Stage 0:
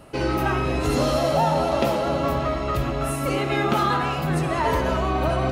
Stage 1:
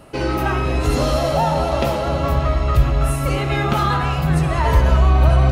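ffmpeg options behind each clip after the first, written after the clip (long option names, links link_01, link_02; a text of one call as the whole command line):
ffmpeg -i in.wav -af "asubboost=boost=6.5:cutoff=110,volume=2.5dB" out.wav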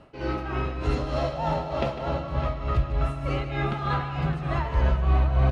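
ffmpeg -i in.wav -filter_complex "[0:a]lowpass=4000,tremolo=f=3.3:d=0.7,asplit=2[link_01][link_02];[link_02]aecho=0:1:151|611:0.266|0.266[link_03];[link_01][link_03]amix=inputs=2:normalize=0,volume=-6.5dB" out.wav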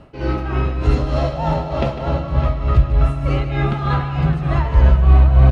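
ffmpeg -i in.wav -af "lowshelf=frequency=240:gain=7,volume=4.5dB" out.wav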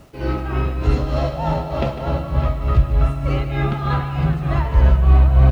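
ffmpeg -i in.wav -af "acrusher=bits=8:mix=0:aa=0.000001,volume=-1.5dB" out.wav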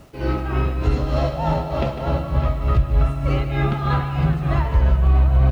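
ffmpeg -i in.wav -af "alimiter=limit=-8dB:level=0:latency=1:release=176" out.wav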